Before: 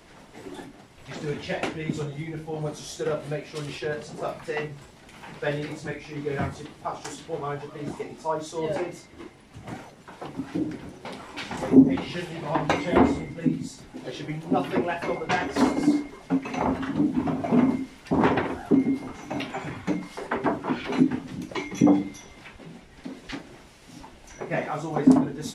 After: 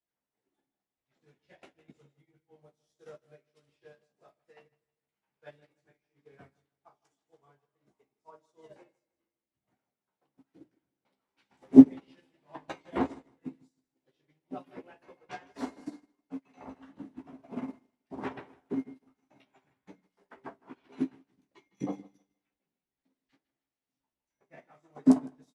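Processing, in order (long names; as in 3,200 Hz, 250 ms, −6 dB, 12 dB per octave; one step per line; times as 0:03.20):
low-shelf EQ 99 Hz −8 dB
double-tracking delay 15 ms −6 dB
repeating echo 157 ms, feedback 49%, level −10.5 dB
expander for the loud parts 2.5 to 1, over −38 dBFS
level +1 dB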